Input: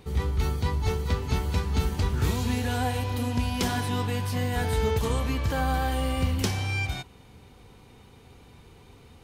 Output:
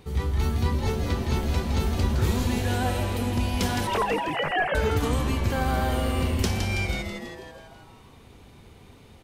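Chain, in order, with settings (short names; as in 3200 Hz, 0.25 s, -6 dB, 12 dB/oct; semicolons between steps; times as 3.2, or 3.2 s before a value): 3.87–4.75 sine-wave speech; on a send: frequency-shifting echo 0.163 s, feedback 60%, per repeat -150 Hz, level -6 dB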